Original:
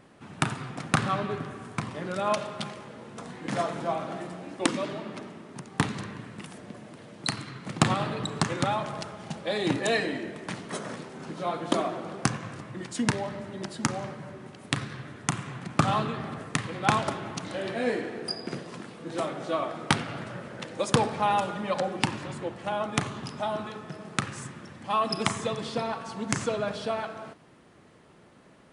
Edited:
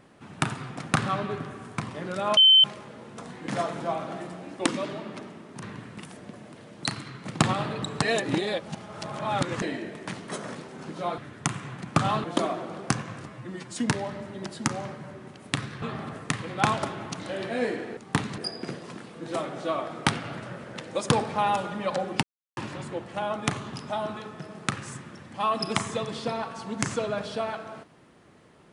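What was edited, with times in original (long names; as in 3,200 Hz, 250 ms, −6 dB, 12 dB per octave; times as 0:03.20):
0:02.37–0:02.64: beep over 3,080 Hz −12 dBFS
0:05.62–0:06.03: move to 0:18.22
0:08.43–0:10.03: reverse
0:12.63–0:12.95: time-stretch 1.5×
0:15.01–0:16.07: move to 0:11.59
0:22.07: splice in silence 0.34 s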